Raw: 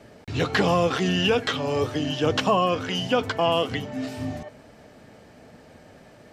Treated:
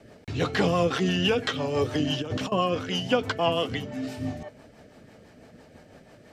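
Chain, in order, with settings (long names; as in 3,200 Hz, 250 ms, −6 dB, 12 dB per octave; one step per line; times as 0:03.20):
0:01.85–0:02.52: compressor whose output falls as the input rises −25 dBFS, ratio −0.5
rotating-speaker cabinet horn 6 Hz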